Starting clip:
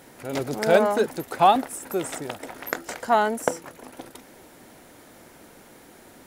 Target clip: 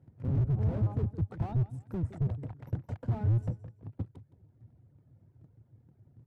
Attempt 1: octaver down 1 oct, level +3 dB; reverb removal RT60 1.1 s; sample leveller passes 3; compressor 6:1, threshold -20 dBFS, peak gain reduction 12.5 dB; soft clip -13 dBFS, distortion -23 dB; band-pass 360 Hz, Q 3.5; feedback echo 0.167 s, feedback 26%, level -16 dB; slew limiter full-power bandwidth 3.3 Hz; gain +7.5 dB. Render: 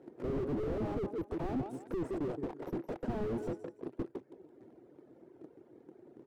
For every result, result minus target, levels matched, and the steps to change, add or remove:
500 Hz band +13.0 dB; soft clip: distortion +12 dB
change: band-pass 100 Hz, Q 3.5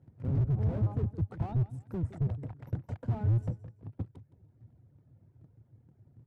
soft clip: distortion +12 dB
change: soft clip -5.5 dBFS, distortion -35 dB

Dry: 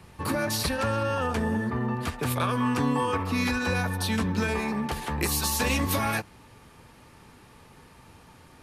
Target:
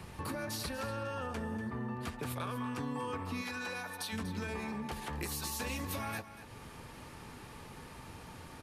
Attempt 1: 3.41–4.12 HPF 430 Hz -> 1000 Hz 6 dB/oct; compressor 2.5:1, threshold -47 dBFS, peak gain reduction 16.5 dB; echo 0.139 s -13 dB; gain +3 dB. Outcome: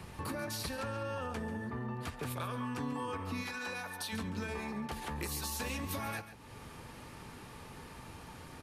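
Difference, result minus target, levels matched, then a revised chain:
echo 0.102 s early
3.41–4.12 HPF 430 Hz -> 1000 Hz 6 dB/oct; compressor 2.5:1, threshold -47 dBFS, peak gain reduction 16.5 dB; echo 0.241 s -13 dB; gain +3 dB

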